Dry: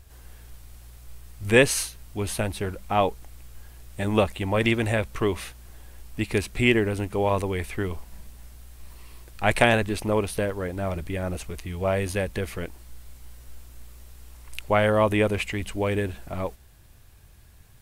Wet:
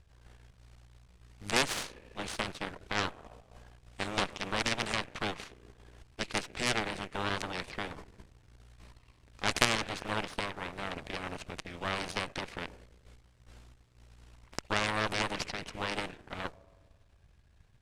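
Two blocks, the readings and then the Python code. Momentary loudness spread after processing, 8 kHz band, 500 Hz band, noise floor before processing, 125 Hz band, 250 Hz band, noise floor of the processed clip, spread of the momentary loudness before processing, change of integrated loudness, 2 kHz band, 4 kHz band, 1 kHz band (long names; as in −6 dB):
13 LU, −6.0 dB, −15.0 dB, −51 dBFS, −15.0 dB, −13.0 dB, −64 dBFS, 14 LU, −9.0 dB, −6.5 dB, −1.0 dB, −7.0 dB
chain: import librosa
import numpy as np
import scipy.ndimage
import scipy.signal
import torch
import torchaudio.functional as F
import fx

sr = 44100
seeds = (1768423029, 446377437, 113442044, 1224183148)

y = fx.rev_spring(x, sr, rt60_s=1.7, pass_ms=(33, 39), chirp_ms=75, drr_db=18.5)
y = fx.cheby_harmonics(y, sr, harmonics=(3, 5, 8), levels_db=(-9, -34, -24), full_scale_db=-2.0)
y = fx.air_absorb(y, sr, metres=91.0)
y = fx.spectral_comp(y, sr, ratio=2.0)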